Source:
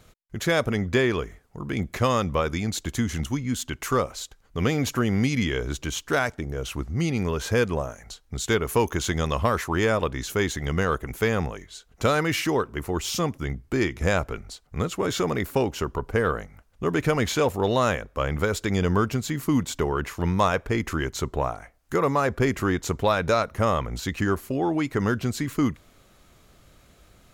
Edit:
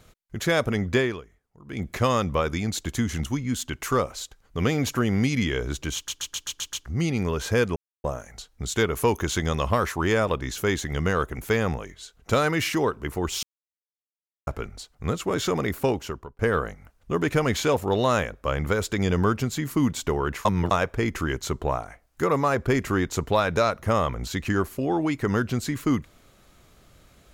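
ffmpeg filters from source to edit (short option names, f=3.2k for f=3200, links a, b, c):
-filter_complex "[0:a]asplit=16[a][b][c][d][e][f][g][h][i][j][k][l][m][n][o][p];[a]atrim=end=1.22,asetpts=PTS-STARTPTS,afade=t=out:st=0.97:d=0.25:silence=0.16788[q];[b]atrim=start=1.22:end=1.64,asetpts=PTS-STARTPTS,volume=-15.5dB[r];[c]atrim=start=1.64:end=6.082,asetpts=PTS-STARTPTS,afade=t=in:d=0.25:silence=0.16788[s];[d]atrim=start=5.948:end=6.082[t];[e]atrim=start=5.948:end=6.082[u];[f]atrim=start=5.948:end=6.082[v];[g]atrim=start=5.948:end=6.082[w];[h]atrim=start=5.948:end=6.082[x];[i]atrim=start=5.948:end=6.082[y];[j]atrim=start=6.858:end=7.76,asetpts=PTS-STARTPTS,afade=t=out:st=0.898:d=0.004:c=hsin,apad=pad_dur=0.28[z];[k]atrim=start=7.76:end=13.15,asetpts=PTS-STARTPTS,afade=t=in:d=0.004:c=hsin,afade=t=out:st=5.386:d=0.004:c=hsin[aa];[l]atrim=start=13.15:end=14.19,asetpts=PTS-STARTPTS,volume=0[ab];[m]atrim=start=14.19:end=16.11,asetpts=PTS-STARTPTS,afade=t=in:d=0.004:c=hsin,afade=t=out:st=1.42:d=0.5[ac];[n]atrim=start=16.11:end=20.172,asetpts=PTS-STARTPTS,afade=t=in:d=0.004:c=hsin[ad];[o]atrim=start=20.168:end=20.432,asetpts=PTS-STARTPTS,areverse[ae];[p]atrim=start=20.428[af];[q][r][s]concat=n=3:v=0:a=1[ag];[ag][t]acrossfade=d=0.004:c1=hsin:c2=hsin[ah];[ah][u]acrossfade=d=0.004:c1=hsin:c2=hsin[ai];[ai][v]acrossfade=d=0.004:c1=hsin:c2=hsin[aj];[aj][w]acrossfade=d=0.004:c1=hsin:c2=hsin[ak];[ak][x]acrossfade=d=0.004:c1=hsin:c2=hsin[al];[al][y]acrossfade=d=0.004:c1=hsin:c2=hsin[am];[z][aa][ab][ac][ad]concat=n=5:v=0:a=1[an];[am][an]acrossfade=d=0.004:c1=hsin:c2=hsin[ao];[ao][ae]acrossfade=d=0.004:c1=hsin:c2=hsin[ap];[ap][af]acrossfade=d=0.004:c1=hsin:c2=hsin"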